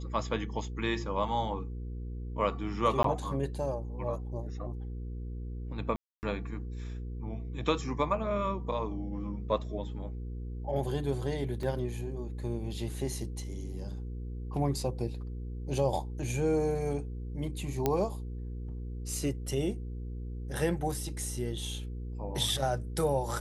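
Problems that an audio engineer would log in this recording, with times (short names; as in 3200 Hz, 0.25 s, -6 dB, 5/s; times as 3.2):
hum 60 Hz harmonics 8 -38 dBFS
3.03–3.04 gap 13 ms
5.96–6.23 gap 0.269 s
11.63 gap 2.2 ms
17.86 pop -13 dBFS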